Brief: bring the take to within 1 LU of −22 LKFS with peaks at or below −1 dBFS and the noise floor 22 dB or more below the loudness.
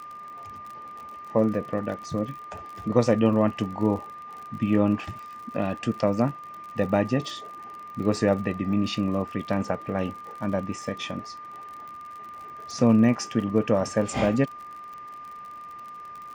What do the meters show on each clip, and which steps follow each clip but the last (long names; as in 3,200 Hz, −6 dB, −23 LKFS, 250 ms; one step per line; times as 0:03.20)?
crackle rate 52 per second; interfering tone 1,200 Hz; level of the tone −38 dBFS; integrated loudness −26.0 LKFS; sample peak −5.0 dBFS; target loudness −22.0 LKFS
→ click removal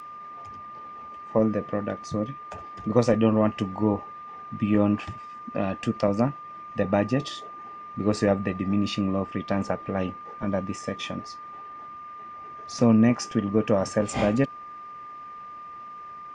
crackle rate 0.061 per second; interfering tone 1,200 Hz; level of the tone −38 dBFS
→ notch filter 1,200 Hz, Q 30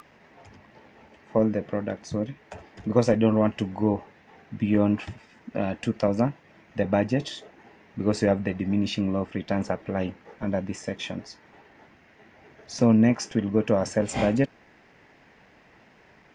interfering tone none found; integrated loudness −26.0 LKFS; sample peak −5.5 dBFS; target loudness −22.0 LKFS
→ level +4 dB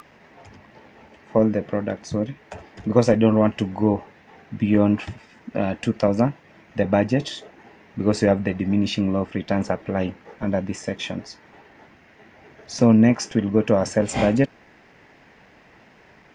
integrated loudness −22.0 LKFS; sample peak −1.5 dBFS; background noise floor −53 dBFS